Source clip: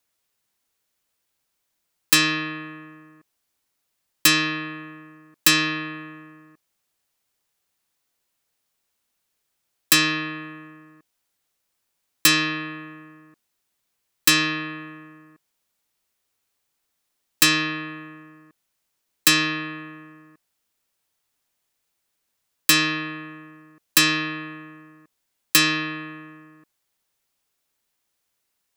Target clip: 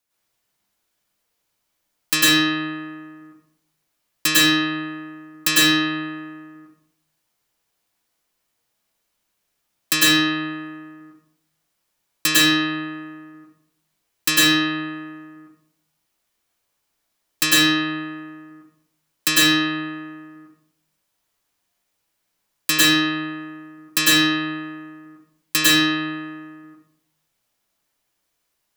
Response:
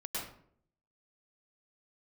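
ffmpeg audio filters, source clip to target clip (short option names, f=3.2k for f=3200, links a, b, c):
-filter_complex "[1:a]atrim=start_sample=2205[a];[0:a][a]afir=irnorm=-1:irlink=0,volume=1.5dB"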